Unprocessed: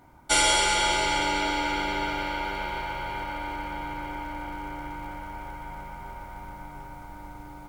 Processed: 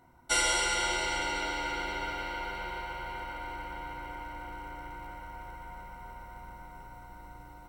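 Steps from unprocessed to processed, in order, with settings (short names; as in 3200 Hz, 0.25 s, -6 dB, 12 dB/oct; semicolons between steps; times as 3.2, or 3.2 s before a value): ripple EQ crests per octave 2, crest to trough 10 dB; gain -7 dB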